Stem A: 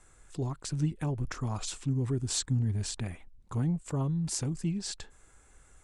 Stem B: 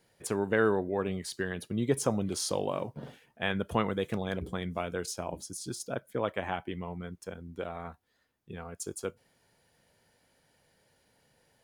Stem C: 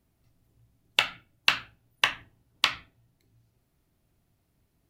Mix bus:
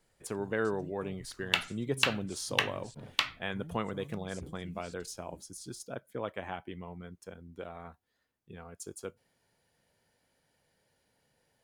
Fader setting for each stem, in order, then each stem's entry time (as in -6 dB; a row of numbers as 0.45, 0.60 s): -18.0, -5.5, -5.0 dB; 0.00, 0.00, 0.55 s